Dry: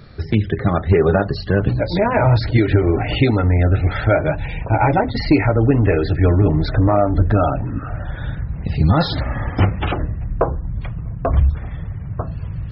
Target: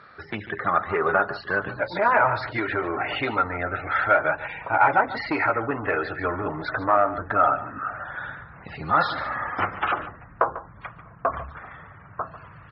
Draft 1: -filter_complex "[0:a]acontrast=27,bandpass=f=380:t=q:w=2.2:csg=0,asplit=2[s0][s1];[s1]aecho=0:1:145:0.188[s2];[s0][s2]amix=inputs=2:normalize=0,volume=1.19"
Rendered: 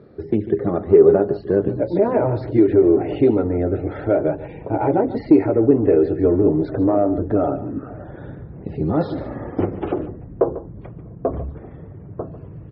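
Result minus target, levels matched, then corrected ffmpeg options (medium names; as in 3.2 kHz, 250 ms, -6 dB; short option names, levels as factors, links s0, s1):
1 kHz band -12.5 dB
-filter_complex "[0:a]acontrast=27,bandpass=f=1300:t=q:w=2.2:csg=0,asplit=2[s0][s1];[s1]aecho=0:1:145:0.188[s2];[s0][s2]amix=inputs=2:normalize=0,volume=1.19"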